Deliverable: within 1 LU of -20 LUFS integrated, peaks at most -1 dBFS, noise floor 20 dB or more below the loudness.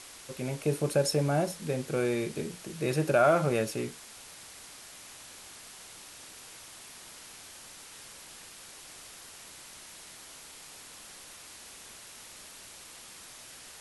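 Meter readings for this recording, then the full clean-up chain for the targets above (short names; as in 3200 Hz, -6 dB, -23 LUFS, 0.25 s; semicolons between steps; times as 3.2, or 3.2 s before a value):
noise floor -49 dBFS; noise floor target -50 dBFS; loudness -29.5 LUFS; peak -12.5 dBFS; loudness target -20.0 LUFS
-> denoiser 6 dB, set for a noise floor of -49 dBFS; gain +9.5 dB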